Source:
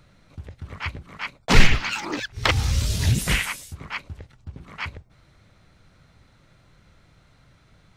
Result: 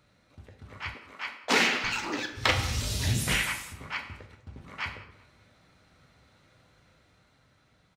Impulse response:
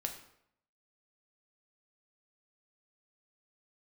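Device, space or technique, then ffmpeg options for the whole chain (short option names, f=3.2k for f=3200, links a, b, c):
far laptop microphone: -filter_complex "[1:a]atrim=start_sample=2205[a];[0:a][a]afir=irnorm=-1:irlink=0,highpass=f=170:p=1,dynaudnorm=f=260:g=9:m=4dB,asettb=1/sr,asplit=3[b][c][d];[b]atrim=end=0.944[e];[c]atrim=start=0.94:end=1.84,asetpts=PTS-STARTPTS,afade=t=in:d=0.004:c=qsin,afade=t=out:st=0.896:d=0.004:c=qsin,highpass=f=240:w=0.5412,highpass=f=240:w=1.3066[f];[d]atrim=start=1.836[g];[e][f]acrossfade=d=0.004:c1=hsin:c2=qsin[h];[h][g]acrossfade=d=0.004:c1=qsin:c2=hsin,asplit=2[i][j];[j]adelay=193,lowpass=f=3.2k:p=1,volume=-20dB,asplit=2[k][l];[l]adelay=193,lowpass=f=3.2k:p=1,volume=0.42,asplit=2[m][n];[n]adelay=193,lowpass=f=3.2k:p=1,volume=0.42[o];[i][k][m][o]amix=inputs=4:normalize=0,volume=-6dB"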